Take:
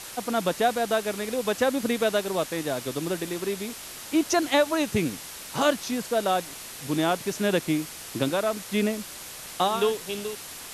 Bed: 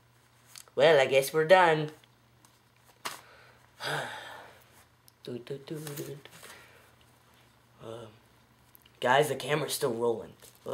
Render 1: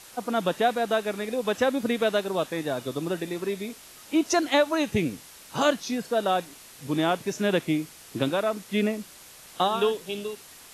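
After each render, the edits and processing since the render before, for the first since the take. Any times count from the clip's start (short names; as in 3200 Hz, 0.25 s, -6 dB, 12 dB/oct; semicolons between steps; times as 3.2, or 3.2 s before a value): noise print and reduce 8 dB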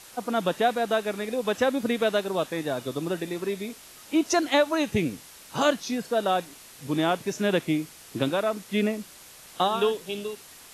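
nothing audible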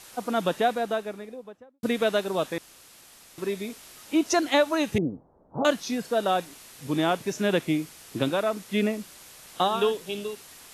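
0.48–1.83 studio fade out; 2.58–3.38 room tone; 4.98–5.65 inverse Chebyshev low-pass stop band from 2700 Hz, stop band 60 dB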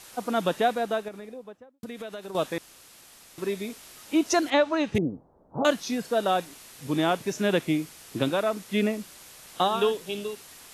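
1.08–2.35 compressor, threshold -35 dBFS; 4.5–4.95 air absorption 120 m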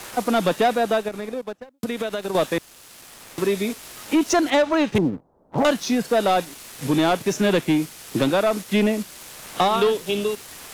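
sample leveller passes 2; three-band squash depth 40%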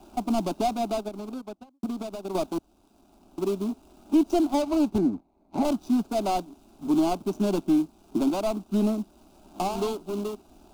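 median filter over 41 samples; fixed phaser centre 490 Hz, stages 6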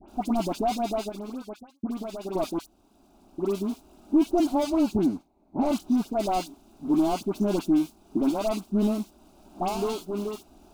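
dispersion highs, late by 84 ms, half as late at 1700 Hz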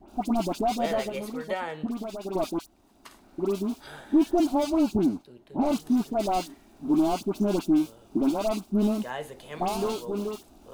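add bed -11.5 dB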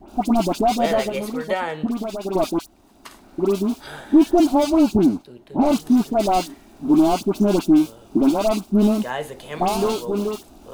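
gain +7.5 dB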